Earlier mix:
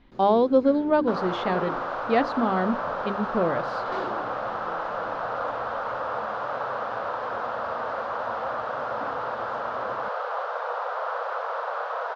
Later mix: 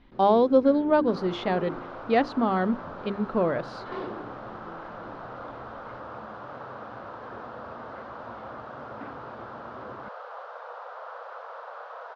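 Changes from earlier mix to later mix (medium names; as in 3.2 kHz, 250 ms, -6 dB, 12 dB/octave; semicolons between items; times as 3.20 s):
first sound: add distance through air 220 m; second sound -11.0 dB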